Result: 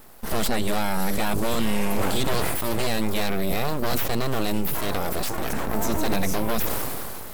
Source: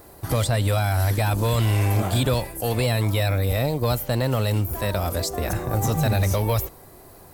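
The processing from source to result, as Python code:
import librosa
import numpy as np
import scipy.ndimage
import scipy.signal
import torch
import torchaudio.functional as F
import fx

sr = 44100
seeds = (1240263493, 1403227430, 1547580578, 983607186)

y = np.abs(x)
y = fx.sustainer(y, sr, db_per_s=22.0)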